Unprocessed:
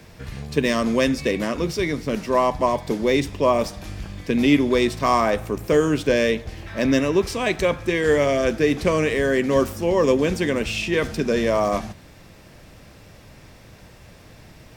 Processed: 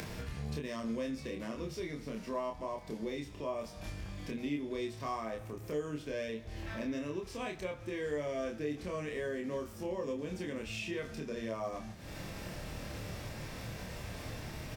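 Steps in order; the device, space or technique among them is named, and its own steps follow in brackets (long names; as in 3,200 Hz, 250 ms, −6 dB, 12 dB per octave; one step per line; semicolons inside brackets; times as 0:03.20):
upward and downward compression (upward compression, threshold −27 dBFS; downward compressor 5 to 1, threshold −34 dBFS, peak gain reduction 20 dB)
harmonic and percussive parts rebalanced percussive −6 dB
double-tracking delay 27 ms −3 dB
level −3.5 dB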